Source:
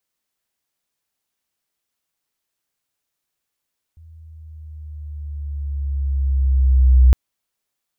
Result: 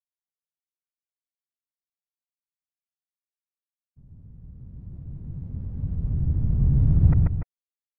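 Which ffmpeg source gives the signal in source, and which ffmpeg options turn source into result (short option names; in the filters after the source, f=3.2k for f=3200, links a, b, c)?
-f lavfi -i "aevalsrc='pow(10,(-6+35*(t/3.16-1))/20)*sin(2*PI*81.7*3.16/(-4.5*log(2)/12)*(exp(-4.5*log(2)/12*t/3.16)-1))':d=3.16:s=44100"
-filter_complex "[0:a]afftfilt=real='re*gte(hypot(re,im),0.0355)':imag='im*gte(hypot(re,im),0.0355)':win_size=1024:overlap=0.75,afftfilt=real='hypot(re,im)*cos(2*PI*random(0))':imag='hypot(re,im)*sin(2*PI*random(1))':win_size=512:overlap=0.75,asplit=2[a][b];[b]aecho=0:1:137|291.5:0.794|0.355[c];[a][c]amix=inputs=2:normalize=0"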